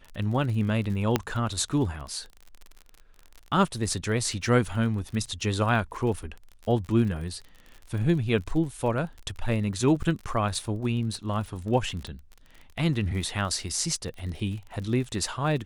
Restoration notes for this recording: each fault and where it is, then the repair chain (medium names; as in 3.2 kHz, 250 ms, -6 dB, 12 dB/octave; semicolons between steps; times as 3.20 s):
crackle 42 per s -35 dBFS
1.16 s: pop -8 dBFS
12.07 s: pop -26 dBFS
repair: de-click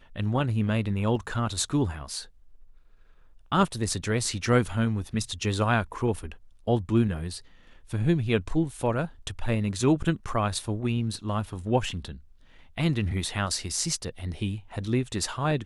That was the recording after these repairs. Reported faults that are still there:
1.16 s: pop